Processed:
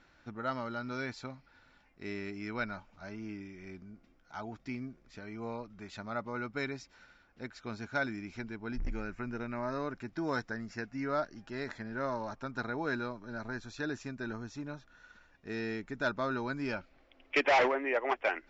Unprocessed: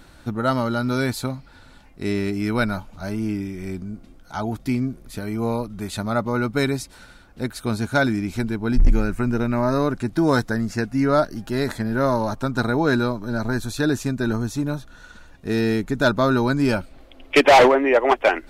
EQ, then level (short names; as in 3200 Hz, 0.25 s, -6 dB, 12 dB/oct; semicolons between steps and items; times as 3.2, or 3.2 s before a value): rippled Chebyshev low-pass 7400 Hz, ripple 6 dB; air absorption 77 m; low shelf 200 Hz -7 dB; -8.5 dB